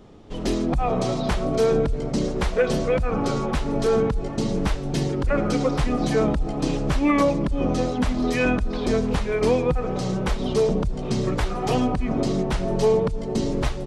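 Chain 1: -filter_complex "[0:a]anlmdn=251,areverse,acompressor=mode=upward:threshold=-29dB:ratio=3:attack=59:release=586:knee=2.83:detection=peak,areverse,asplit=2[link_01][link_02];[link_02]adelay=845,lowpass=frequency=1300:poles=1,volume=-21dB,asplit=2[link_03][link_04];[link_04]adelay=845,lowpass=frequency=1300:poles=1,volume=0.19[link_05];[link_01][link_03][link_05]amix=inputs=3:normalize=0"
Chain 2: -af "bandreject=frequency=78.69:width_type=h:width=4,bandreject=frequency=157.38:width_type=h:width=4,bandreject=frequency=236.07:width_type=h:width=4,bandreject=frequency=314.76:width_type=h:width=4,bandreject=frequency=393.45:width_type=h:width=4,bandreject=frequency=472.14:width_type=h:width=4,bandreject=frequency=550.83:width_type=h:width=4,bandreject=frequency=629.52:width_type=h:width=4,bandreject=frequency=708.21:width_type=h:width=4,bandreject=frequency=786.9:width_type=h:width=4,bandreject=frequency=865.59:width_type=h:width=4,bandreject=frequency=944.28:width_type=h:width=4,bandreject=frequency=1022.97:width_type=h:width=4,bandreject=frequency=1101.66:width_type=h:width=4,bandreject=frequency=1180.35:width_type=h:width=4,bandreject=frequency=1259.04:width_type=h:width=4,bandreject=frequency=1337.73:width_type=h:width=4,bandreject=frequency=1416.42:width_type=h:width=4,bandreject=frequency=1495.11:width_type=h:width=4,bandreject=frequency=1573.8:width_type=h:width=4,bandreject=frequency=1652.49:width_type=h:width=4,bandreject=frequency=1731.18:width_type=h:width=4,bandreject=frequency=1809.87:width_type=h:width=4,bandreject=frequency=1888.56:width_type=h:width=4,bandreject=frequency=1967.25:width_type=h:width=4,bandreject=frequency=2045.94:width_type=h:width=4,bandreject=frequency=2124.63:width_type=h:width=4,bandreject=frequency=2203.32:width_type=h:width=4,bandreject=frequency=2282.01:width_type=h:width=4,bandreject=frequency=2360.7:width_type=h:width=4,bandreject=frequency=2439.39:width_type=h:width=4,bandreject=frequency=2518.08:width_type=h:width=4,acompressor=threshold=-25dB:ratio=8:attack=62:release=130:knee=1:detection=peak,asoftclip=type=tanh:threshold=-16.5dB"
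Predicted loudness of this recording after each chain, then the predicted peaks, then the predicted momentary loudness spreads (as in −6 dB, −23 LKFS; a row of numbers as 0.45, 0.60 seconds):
−24.0, −27.5 LKFS; −8.0, −17.0 dBFS; 5, 2 LU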